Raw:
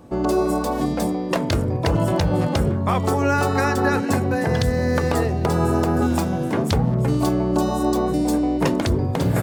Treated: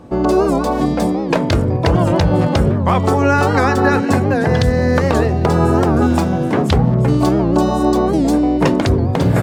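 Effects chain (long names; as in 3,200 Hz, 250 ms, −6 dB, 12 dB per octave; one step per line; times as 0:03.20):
high-shelf EQ 8,500 Hz −12 dB
wow of a warped record 78 rpm, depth 160 cents
level +6 dB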